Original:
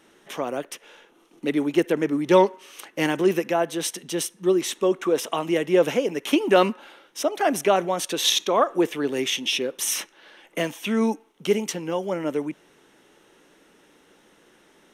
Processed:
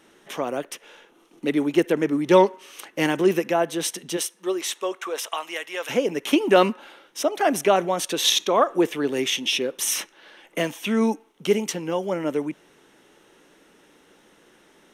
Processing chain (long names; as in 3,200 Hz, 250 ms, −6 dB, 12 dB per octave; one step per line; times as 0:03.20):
0:04.16–0:05.89: high-pass filter 410 Hz → 1,300 Hz 12 dB per octave
level +1 dB